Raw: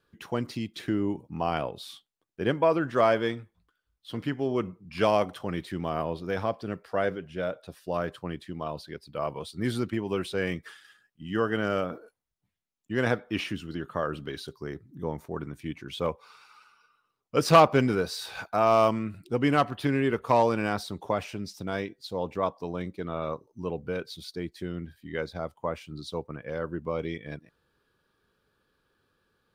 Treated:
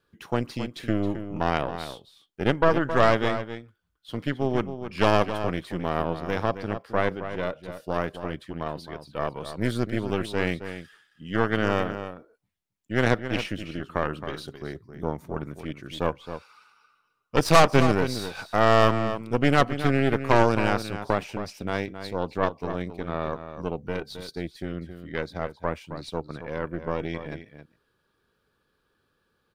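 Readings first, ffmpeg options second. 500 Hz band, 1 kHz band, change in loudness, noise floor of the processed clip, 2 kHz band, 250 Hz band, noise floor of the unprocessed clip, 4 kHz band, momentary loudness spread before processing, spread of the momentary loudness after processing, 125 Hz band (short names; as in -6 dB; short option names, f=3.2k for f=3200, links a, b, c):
+2.0 dB, +2.0 dB, +2.5 dB, -73 dBFS, +5.0 dB, +2.5 dB, -79 dBFS, +3.5 dB, 14 LU, 15 LU, +4.5 dB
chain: -filter_complex "[0:a]aeval=exprs='0.501*(cos(1*acos(clip(val(0)/0.501,-1,1)))-cos(1*PI/2))+0.112*(cos(6*acos(clip(val(0)/0.501,-1,1)))-cos(6*PI/2))':c=same,asplit=2[a][b];[b]adelay=268.2,volume=-10dB,highshelf=f=4k:g=-6.04[c];[a][c]amix=inputs=2:normalize=0"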